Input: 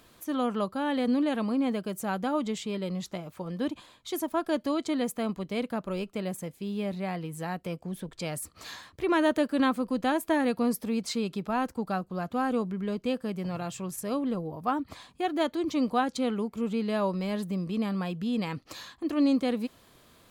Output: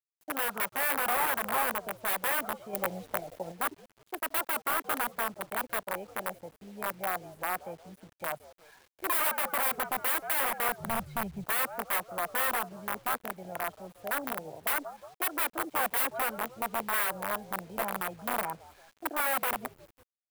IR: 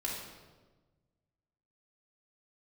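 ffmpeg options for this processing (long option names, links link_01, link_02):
-filter_complex "[0:a]asettb=1/sr,asplit=3[link_01][link_02][link_03];[link_01]atrim=end=17.794[link_04];[link_02]atrim=start=17.79:end=18.3,asetpts=PTS-STARTPTS,afade=type=in:duration=0.004:curve=qsin,afade=type=out:start_time=0.506:duration=0.004:curve=qsin,aeval=exprs='val(0)+0.5*0.00447*sgn(val(0))':channel_layout=same[link_05];[link_03]atrim=start=18.296[link_06];[link_04][link_05]acrossfade=duration=0.004:curve1=hsin:curve2=qsin[link_07];[link_07][link_06]acrossfade=duration=0.004:curve1=qsin:curve2=hsin,acrossover=split=250|430|4600[link_08][link_09][link_10][link_11];[link_10]aecho=1:1:1.3:0.9[link_12];[link_11]acompressor=threshold=-58dB:ratio=5[link_13];[link_08][link_09][link_12][link_13]amix=inputs=4:normalize=0,afwtdn=0.0282,asplit=5[link_14][link_15][link_16][link_17][link_18];[link_15]adelay=177,afreqshift=-80,volume=-17dB[link_19];[link_16]adelay=354,afreqshift=-160,volume=-23dB[link_20];[link_17]adelay=531,afreqshift=-240,volume=-29dB[link_21];[link_18]adelay=708,afreqshift=-320,volume=-35.1dB[link_22];[link_14][link_19][link_20][link_21][link_22]amix=inputs=5:normalize=0,aeval=exprs='(mod(15.8*val(0)+1,2)-1)/15.8':channel_layout=same,asettb=1/sr,asplit=3[link_23][link_24][link_25];[link_23]atrim=end=10.804[link_26];[link_24]atrim=start=10.8:end=11.44,asetpts=PTS-STARTPTS,afade=type=in:duration=0.004:curve=qsin,afade=type=out:start_time=0.636:duration=0.004:curve=qsin,lowshelf=frequency=220:width_type=q:width=1.5:gain=12[link_27];[link_25]atrim=start=11.436[link_28];[link_26][link_27]acrossfade=duration=0.004:curve1=hsin:curve2=qsin[link_29];[link_29][link_28]acrossfade=duration=0.004:curve1=qsin:curve2=hsin,aexciter=amount=8.4:drive=6.1:freq=8800,acrossover=split=500 2300:gain=0.126 1 0.158[link_30][link_31][link_32];[link_30][link_31][link_32]amix=inputs=3:normalize=0,acrusher=bits=9:mix=0:aa=0.000001,asettb=1/sr,asplit=3[link_33][link_34][link_35];[link_33]atrim=end=2.734[link_36];[link_34]atrim=start=2.73:end=3.52,asetpts=PTS-STARTPTS,afade=type=in:duration=0.004:curve=qsin,afade=type=out:start_time=0.786:duration=0.004:curve=qsin,acontrast=27[link_37];[link_35]atrim=start=3.516[link_38];[link_36][link_37]acrossfade=duration=0.004:curve1=hsin:curve2=qsin[link_39];[link_39][link_38]acrossfade=duration=0.004:curve1=qsin:curve2=hsin,volume=2.5dB"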